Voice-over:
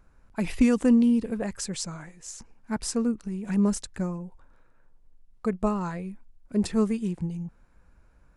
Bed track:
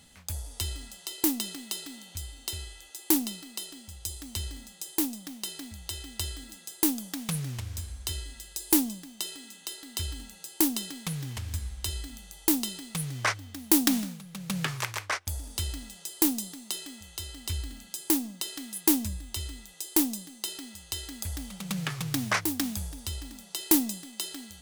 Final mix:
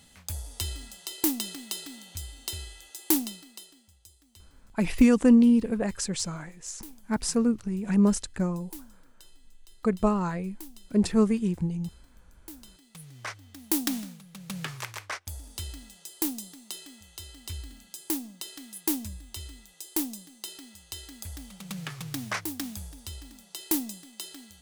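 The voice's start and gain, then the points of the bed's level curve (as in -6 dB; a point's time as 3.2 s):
4.40 s, +2.0 dB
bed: 3.19 s 0 dB
4.18 s -21 dB
12.53 s -21 dB
13.64 s -5 dB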